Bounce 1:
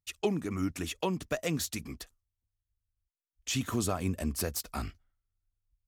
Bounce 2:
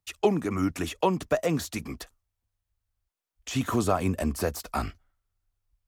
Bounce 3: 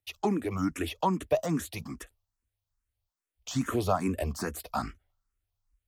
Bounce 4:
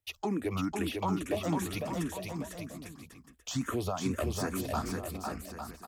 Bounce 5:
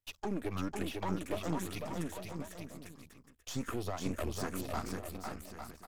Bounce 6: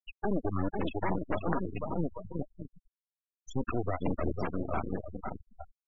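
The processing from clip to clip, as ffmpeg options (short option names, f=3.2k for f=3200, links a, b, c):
-filter_complex "[0:a]equalizer=f=830:w=0.57:g=6.5,acrossover=split=180|1400[a][b][c];[c]alimiter=level_in=6.5dB:limit=-24dB:level=0:latency=1:release=12,volume=-6.5dB[d];[a][b][d]amix=inputs=3:normalize=0,volume=3.5dB"
-filter_complex "[0:a]asplit=2[a][b];[b]afreqshift=2.4[c];[a][c]amix=inputs=2:normalize=1"
-filter_complex "[0:a]alimiter=limit=-23dB:level=0:latency=1:release=203,asplit=2[a][b];[b]aecho=0:1:500|850|1095|1266|1387:0.631|0.398|0.251|0.158|0.1[c];[a][c]amix=inputs=2:normalize=0"
-af "aeval=exprs='if(lt(val(0),0),0.251*val(0),val(0))':c=same,volume=-1.5dB"
-af "aeval=exprs='0.1*(cos(1*acos(clip(val(0)/0.1,-1,1)))-cos(1*PI/2))+0.0398*(cos(3*acos(clip(val(0)/0.1,-1,1)))-cos(3*PI/2))+0.0251*(cos(4*acos(clip(val(0)/0.1,-1,1)))-cos(4*PI/2))+0.00158*(cos(5*acos(clip(val(0)/0.1,-1,1)))-cos(5*PI/2))+0.00891*(cos(8*acos(clip(val(0)/0.1,-1,1)))-cos(8*PI/2))':c=same,afftfilt=real='re*gte(hypot(re,im),0.0178)':imag='im*gte(hypot(re,im),0.0178)':win_size=1024:overlap=0.75,volume=7.5dB"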